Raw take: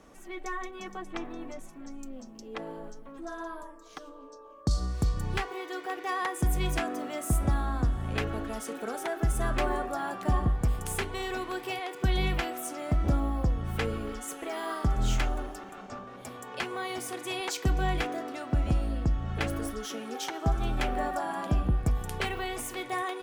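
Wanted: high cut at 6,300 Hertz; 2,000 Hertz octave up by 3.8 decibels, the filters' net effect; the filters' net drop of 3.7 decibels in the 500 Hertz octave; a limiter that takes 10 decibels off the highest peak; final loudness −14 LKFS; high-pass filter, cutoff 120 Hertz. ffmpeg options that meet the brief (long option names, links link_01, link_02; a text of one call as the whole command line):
ffmpeg -i in.wav -af "highpass=120,lowpass=6300,equalizer=frequency=500:width_type=o:gain=-5.5,equalizer=frequency=2000:width_type=o:gain=5,volume=22.5dB,alimiter=limit=-2dB:level=0:latency=1" out.wav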